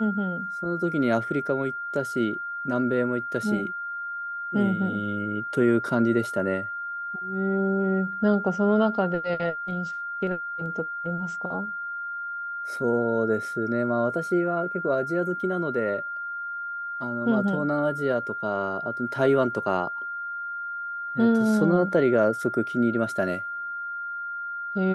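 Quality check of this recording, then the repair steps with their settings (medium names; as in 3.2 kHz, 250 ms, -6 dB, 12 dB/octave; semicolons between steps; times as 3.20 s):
whine 1.4 kHz -30 dBFS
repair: band-stop 1.4 kHz, Q 30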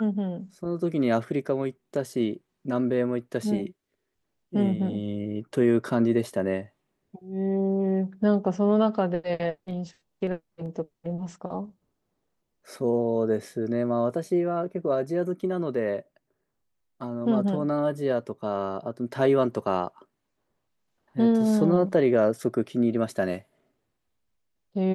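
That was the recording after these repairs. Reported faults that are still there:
nothing left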